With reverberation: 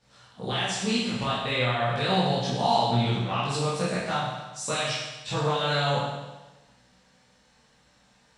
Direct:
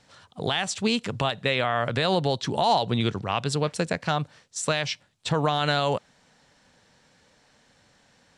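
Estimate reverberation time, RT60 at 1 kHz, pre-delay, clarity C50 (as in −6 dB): 1.1 s, 1.1 s, 16 ms, 0.0 dB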